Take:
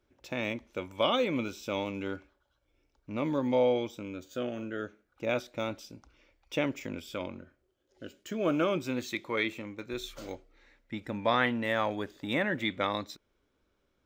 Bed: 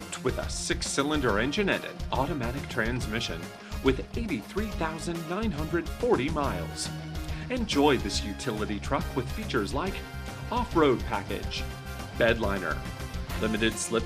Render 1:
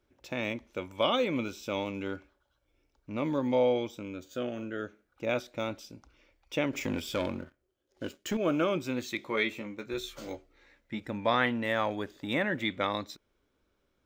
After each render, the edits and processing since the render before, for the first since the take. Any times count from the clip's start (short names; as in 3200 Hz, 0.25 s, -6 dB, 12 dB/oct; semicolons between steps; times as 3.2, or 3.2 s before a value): 6.73–8.37 sample leveller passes 2; 9.17–11 doubler 14 ms -6 dB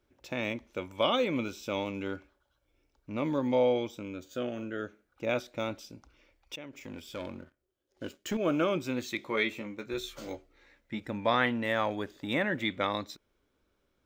6.56–8.55 fade in, from -17.5 dB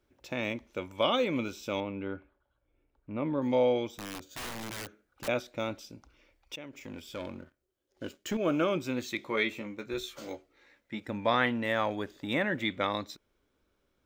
1.8–3.42 air absorption 430 m; 3.98–5.28 wrapped overs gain 34 dB; 10.03–11.09 HPF 160 Hz 6 dB/oct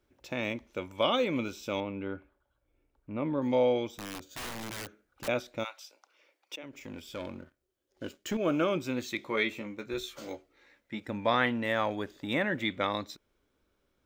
5.63–6.62 HPF 920 Hz -> 240 Hz 24 dB/oct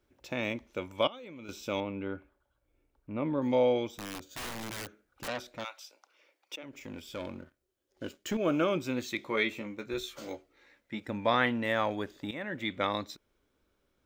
1.07–1.49 level quantiser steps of 23 dB; 5.27–6.68 core saturation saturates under 2600 Hz; 12.31–12.84 fade in, from -14.5 dB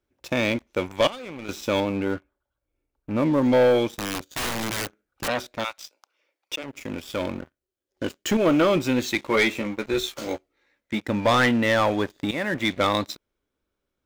sample leveller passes 3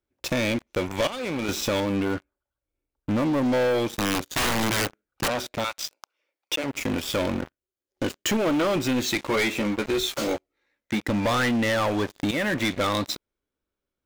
compressor 4:1, threshold -30 dBFS, peak gain reduction 12 dB; sample leveller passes 3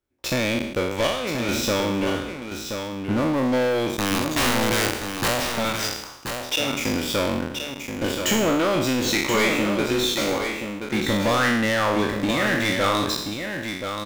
spectral trails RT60 0.85 s; echo 1.028 s -7 dB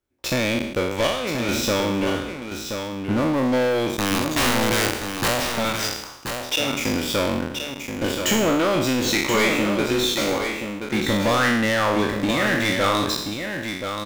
gain +1 dB